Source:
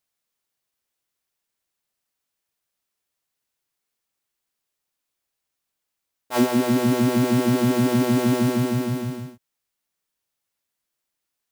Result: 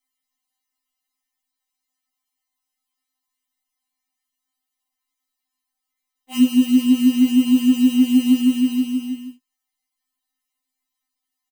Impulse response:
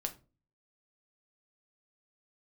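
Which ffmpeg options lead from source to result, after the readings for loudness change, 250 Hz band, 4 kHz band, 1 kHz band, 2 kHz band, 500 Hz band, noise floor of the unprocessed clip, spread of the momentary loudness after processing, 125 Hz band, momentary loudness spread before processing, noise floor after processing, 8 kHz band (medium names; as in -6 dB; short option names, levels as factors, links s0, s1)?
+4.0 dB, +6.0 dB, +4.0 dB, under -15 dB, no reading, under -20 dB, -82 dBFS, 10 LU, under -20 dB, 9 LU, -83 dBFS, -0.5 dB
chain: -af "aecho=1:1:1:0.7,afftfilt=real='re*3.46*eq(mod(b,12),0)':imag='im*3.46*eq(mod(b,12),0)':win_size=2048:overlap=0.75"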